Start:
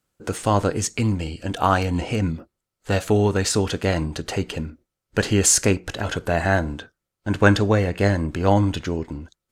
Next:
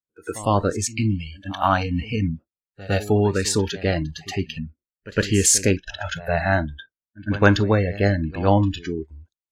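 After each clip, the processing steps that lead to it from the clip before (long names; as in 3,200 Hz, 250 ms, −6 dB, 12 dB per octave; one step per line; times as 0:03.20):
noise reduction from a noise print of the clip's start 27 dB
echo ahead of the sound 108 ms −17.5 dB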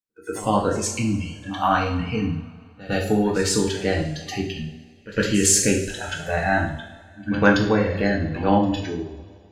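convolution reverb, pre-delay 3 ms, DRR −0.5 dB
level −3 dB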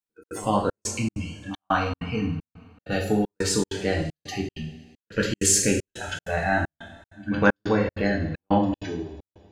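gate pattern "xxx.xxxxx.." 194 BPM −60 dB
level −2.5 dB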